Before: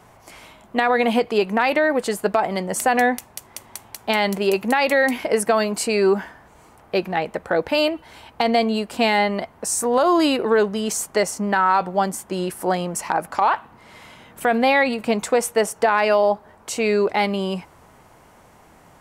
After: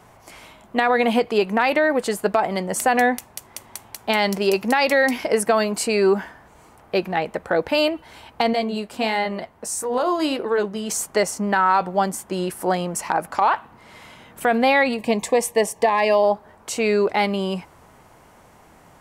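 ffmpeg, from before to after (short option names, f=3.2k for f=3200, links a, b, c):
-filter_complex "[0:a]asettb=1/sr,asplit=3[a][b][c];[a]atrim=end=4.194[d];[b]atrim=start=4.19:end=5.32,asetpts=PTS-STARTPTS,afade=t=in:d=0.004:c=qsin,afade=t=out:st=1.126:d=0.004:c=qsin,equalizer=f=5.3k:t=o:w=0.38:g=8[e];[c]atrim=start=5.316[f];[d][e]acrossfade=d=0.004:c1=hsin:c2=qsin[g];[g][f]acrossfade=d=0.004:c1=qsin:c2=hsin,asettb=1/sr,asplit=3[h][i][j];[h]atrim=end=8.534[k];[i]atrim=start=8.53:end=10.9,asetpts=PTS-STARTPTS,afade=t=in:d=0.004:c=qsin,afade=t=out:st=2.366:d=0.004:c=qsin,flanger=delay=2:depth=8.5:regen=-60:speed=1.5:shape=sinusoidal[l];[j]atrim=start=10.896[m];[k][l]acrossfade=d=0.004:c1=hsin:c2=qsin[n];[n][m]acrossfade=d=0.004:c1=qsin:c2=hsin,asettb=1/sr,asplit=3[o][p][q];[o]atrim=end=14.974[r];[p]atrim=start=14.97:end=16.24,asetpts=PTS-STARTPTS,afade=t=in:d=0.004:c=qsin,afade=t=out:st=1.266:d=0.004:c=qsin,asuperstop=centerf=1400:order=8:qfactor=3.2[s];[q]atrim=start=16.236[t];[r][s]acrossfade=d=0.004:c1=hsin:c2=qsin[u];[u][t]acrossfade=d=0.004:c1=qsin:c2=hsin"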